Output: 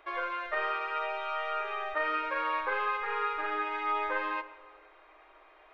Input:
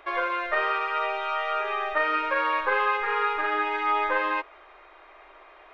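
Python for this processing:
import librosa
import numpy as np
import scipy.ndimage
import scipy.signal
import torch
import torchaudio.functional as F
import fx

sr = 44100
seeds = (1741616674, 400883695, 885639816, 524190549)

y = fx.room_shoebox(x, sr, seeds[0], volume_m3=2800.0, walls='mixed', distance_m=0.55)
y = y * librosa.db_to_amplitude(-7.5)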